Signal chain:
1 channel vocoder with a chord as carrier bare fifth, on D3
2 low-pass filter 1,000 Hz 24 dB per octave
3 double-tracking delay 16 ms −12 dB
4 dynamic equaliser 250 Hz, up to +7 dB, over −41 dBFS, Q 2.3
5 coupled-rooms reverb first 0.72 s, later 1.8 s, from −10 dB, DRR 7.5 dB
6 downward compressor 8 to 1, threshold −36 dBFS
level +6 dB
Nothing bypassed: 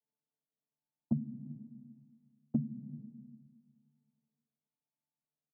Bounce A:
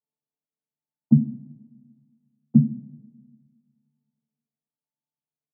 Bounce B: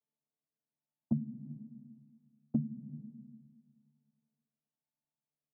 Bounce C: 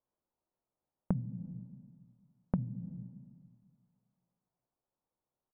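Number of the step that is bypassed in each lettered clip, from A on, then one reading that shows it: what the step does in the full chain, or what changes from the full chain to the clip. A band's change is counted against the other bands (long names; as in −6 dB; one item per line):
6, change in momentary loudness spread −6 LU
3, change in momentary loudness spread +1 LU
1, change in crest factor +3.0 dB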